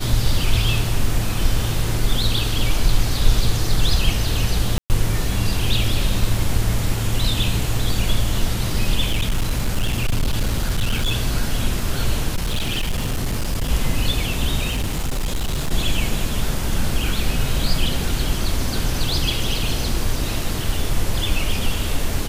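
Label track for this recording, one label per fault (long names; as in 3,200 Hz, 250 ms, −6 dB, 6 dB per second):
4.780000	4.900000	drop-out 119 ms
9.080000	11.120000	clipping −15 dBFS
12.350000	13.710000	clipping −17.5 dBFS
14.680000	15.710000	clipping −18 dBFS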